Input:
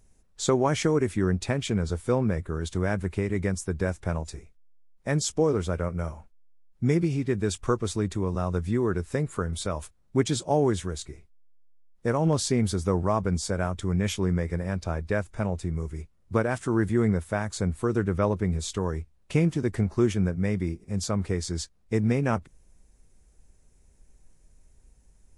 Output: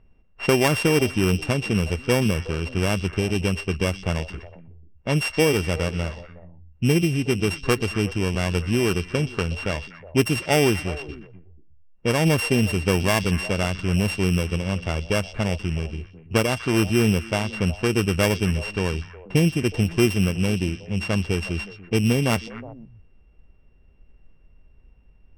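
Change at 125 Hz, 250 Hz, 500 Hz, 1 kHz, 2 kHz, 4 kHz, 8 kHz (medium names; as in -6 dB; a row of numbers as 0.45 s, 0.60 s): +4.0 dB, +4.0 dB, +3.5 dB, +2.5 dB, +9.5 dB, +9.5 dB, +3.0 dB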